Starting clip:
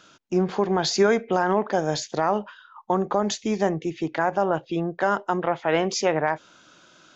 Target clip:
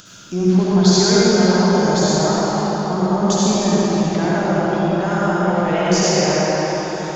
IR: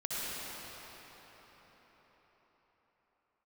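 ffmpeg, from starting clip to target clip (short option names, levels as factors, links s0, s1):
-filter_complex "[0:a]bass=f=250:g=12,treble=f=4000:g=13,acompressor=mode=upward:threshold=0.0282:ratio=2.5[s0];[1:a]atrim=start_sample=2205[s1];[s0][s1]afir=irnorm=-1:irlink=0,volume=0.794"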